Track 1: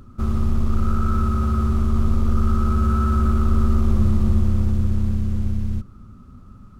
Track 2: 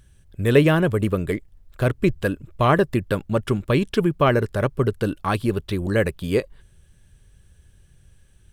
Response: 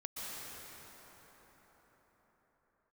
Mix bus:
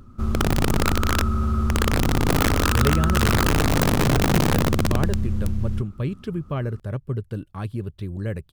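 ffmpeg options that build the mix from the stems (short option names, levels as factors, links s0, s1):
-filter_complex "[0:a]aeval=exprs='(mod(3.98*val(0)+1,2)-1)/3.98':c=same,volume=0.794[s0];[1:a]equalizer=f=110:t=o:w=2.4:g=12.5,adelay=2300,volume=0.178[s1];[s0][s1]amix=inputs=2:normalize=0"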